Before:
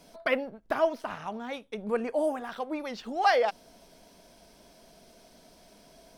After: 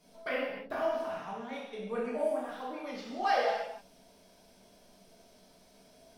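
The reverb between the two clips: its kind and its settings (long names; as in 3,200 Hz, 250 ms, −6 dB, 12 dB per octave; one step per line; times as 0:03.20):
reverb whose tail is shaped and stops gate 340 ms falling, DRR −7 dB
level −12 dB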